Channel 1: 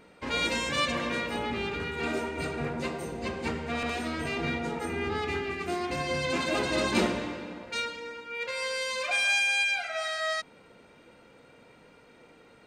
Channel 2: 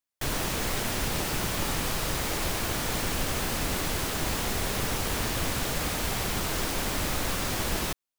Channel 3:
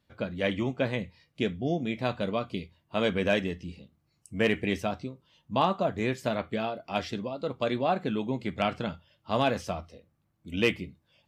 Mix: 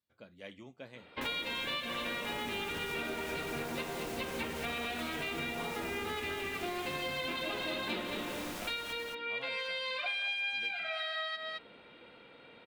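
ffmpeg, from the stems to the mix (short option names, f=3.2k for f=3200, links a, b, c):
-filter_complex "[0:a]highshelf=f=4.8k:t=q:w=3:g=-10.5,adelay=950,volume=-1dB,asplit=2[a][b];[b]volume=-9dB[c];[1:a]alimiter=limit=-22dB:level=0:latency=1,adelay=1000,volume=-11.5dB,asplit=2[d][e];[e]volume=-6dB[f];[2:a]highshelf=f=4.9k:g=9.5,volume=-19.5dB[g];[c][f]amix=inputs=2:normalize=0,aecho=0:1:218:1[h];[a][d][g][h]amix=inputs=4:normalize=0,lowshelf=f=160:g=-8,acompressor=threshold=-34dB:ratio=6"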